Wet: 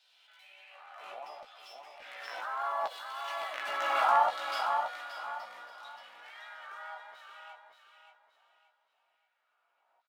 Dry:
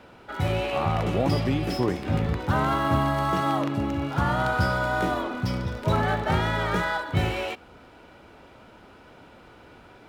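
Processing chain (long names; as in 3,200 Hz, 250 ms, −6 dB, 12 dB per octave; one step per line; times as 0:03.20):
source passing by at 0:03.82, 9 m/s, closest 2 metres
Butterworth high-pass 170 Hz 36 dB per octave
parametric band 670 Hz +12 dB 0.85 octaves
auto-filter high-pass saw down 0.7 Hz 850–4,100 Hz
flanger 1.5 Hz, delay 1 ms, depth 9.3 ms, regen +72%
double-tracking delay 16 ms −4.5 dB
repeating echo 576 ms, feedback 32%, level −6 dB
background raised ahead of every attack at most 28 dB per second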